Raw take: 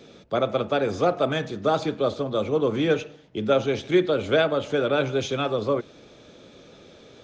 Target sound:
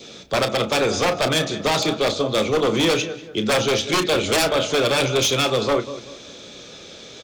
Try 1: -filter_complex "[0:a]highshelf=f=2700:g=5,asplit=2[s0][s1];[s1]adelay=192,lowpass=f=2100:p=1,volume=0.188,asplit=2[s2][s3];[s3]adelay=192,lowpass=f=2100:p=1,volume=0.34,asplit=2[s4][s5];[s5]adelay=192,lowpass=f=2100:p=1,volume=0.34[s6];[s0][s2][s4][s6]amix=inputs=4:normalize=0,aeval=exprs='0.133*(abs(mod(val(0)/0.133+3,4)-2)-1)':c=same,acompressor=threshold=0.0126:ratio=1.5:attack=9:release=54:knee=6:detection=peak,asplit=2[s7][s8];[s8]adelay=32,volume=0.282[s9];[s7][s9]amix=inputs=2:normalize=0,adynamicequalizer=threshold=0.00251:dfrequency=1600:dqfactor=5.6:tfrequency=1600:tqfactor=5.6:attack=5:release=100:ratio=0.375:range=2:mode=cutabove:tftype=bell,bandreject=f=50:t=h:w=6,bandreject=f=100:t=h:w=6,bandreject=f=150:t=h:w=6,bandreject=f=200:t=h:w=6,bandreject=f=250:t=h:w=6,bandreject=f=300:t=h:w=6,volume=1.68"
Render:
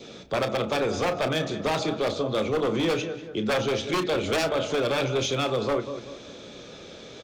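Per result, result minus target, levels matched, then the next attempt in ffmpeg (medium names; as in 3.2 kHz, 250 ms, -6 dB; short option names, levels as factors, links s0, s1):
compression: peak gain reduction +6 dB; 4 kHz band -3.5 dB
-filter_complex "[0:a]highshelf=f=2700:g=5,asplit=2[s0][s1];[s1]adelay=192,lowpass=f=2100:p=1,volume=0.188,asplit=2[s2][s3];[s3]adelay=192,lowpass=f=2100:p=1,volume=0.34,asplit=2[s4][s5];[s5]adelay=192,lowpass=f=2100:p=1,volume=0.34[s6];[s0][s2][s4][s6]amix=inputs=4:normalize=0,aeval=exprs='0.133*(abs(mod(val(0)/0.133+3,4)-2)-1)':c=same,asplit=2[s7][s8];[s8]adelay=32,volume=0.282[s9];[s7][s9]amix=inputs=2:normalize=0,adynamicequalizer=threshold=0.00251:dfrequency=1600:dqfactor=5.6:tfrequency=1600:tqfactor=5.6:attack=5:release=100:ratio=0.375:range=2:mode=cutabove:tftype=bell,bandreject=f=50:t=h:w=6,bandreject=f=100:t=h:w=6,bandreject=f=150:t=h:w=6,bandreject=f=200:t=h:w=6,bandreject=f=250:t=h:w=6,bandreject=f=300:t=h:w=6,volume=1.68"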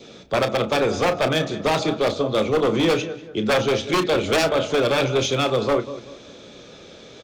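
4 kHz band -3.5 dB
-filter_complex "[0:a]highshelf=f=2700:g=15,asplit=2[s0][s1];[s1]adelay=192,lowpass=f=2100:p=1,volume=0.188,asplit=2[s2][s3];[s3]adelay=192,lowpass=f=2100:p=1,volume=0.34,asplit=2[s4][s5];[s5]adelay=192,lowpass=f=2100:p=1,volume=0.34[s6];[s0][s2][s4][s6]amix=inputs=4:normalize=0,aeval=exprs='0.133*(abs(mod(val(0)/0.133+3,4)-2)-1)':c=same,asplit=2[s7][s8];[s8]adelay=32,volume=0.282[s9];[s7][s9]amix=inputs=2:normalize=0,adynamicequalizer=threshold=0.00251:dfrequency=1600:dqfactor=5.6:tfrequency=1600:tqfactor=5.6:attack=5:release=100:ratio=0.375:range=2:mode=cutabove:tftype=bell,bandreject=f=50:t=h:w=6,bandreject=f=100:t=h:w=6,bandreject=f=150:t=h:w=6,bandreject=f=200:t=h:w=6,bandreject=f=250:t=h:w=6,bandreject=f=300:t=h:w=6,volume=1.68"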